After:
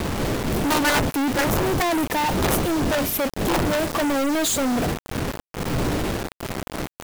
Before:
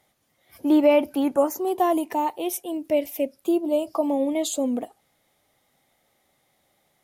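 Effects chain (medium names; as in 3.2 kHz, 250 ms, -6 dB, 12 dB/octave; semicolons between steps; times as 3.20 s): wind noise 330 Hz -29 dBFS; companded quantiser 2-bit; integer overflow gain 5 dB; trim +4 dB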